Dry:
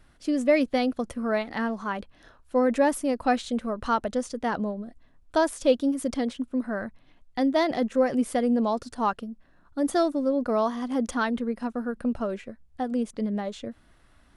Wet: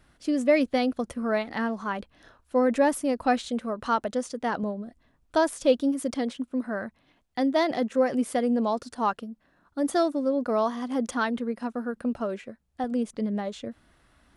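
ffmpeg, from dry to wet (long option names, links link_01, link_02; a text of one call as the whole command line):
ffmpeg -i in.wav -af "asetnsamples=nb_out_samples=441:pad=0,asendcmd='3.48 highpass f 160;4.63 highpass f 52;5.99 highpass f 150;12.84 highpass f 50',highpass=frequency=46:poles=1" out.wav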